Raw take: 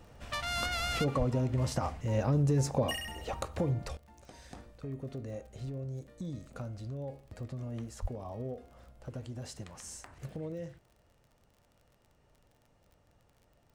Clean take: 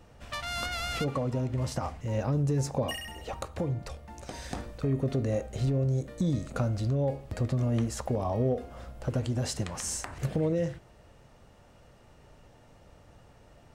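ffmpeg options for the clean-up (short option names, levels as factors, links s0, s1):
-filter_complex "[0:a]adeclick=t=4,asplit=3[s0][s1][s2];[s0]afade=t=out:st=1.18:d=0.02[s3];[s1]highpass=f=140:w=0.5412,highpass=f=140:w=1.3066,afade=t=in:st=1.18:d=0.02,afade=t=out:st=1.3:d=0.02[s4];[s2]afade=t=in:st=1.3:d=0.02[s5];[s3][s4][s5]amix=inputs=3:normalize=0,asplit=3[s6][s7][s8];[s6]afade=t=out:st=8.01:d=0.02[s9];[s7]highpass=f=140:w=0.5412,highpass=f=140:w=1.3066,afade=t=in:st=8.01:d=0.02,afade=t=out:st=8.13:d=0.02[s10];[s8]afade=t=in:st=8.13:d=0.02[s11];[s9][s10][s11]amix=inputs=3:normalize=0,asetnsamples=n=441:p=0,asendcmd='3.97 volume volume 12dB',volume=1"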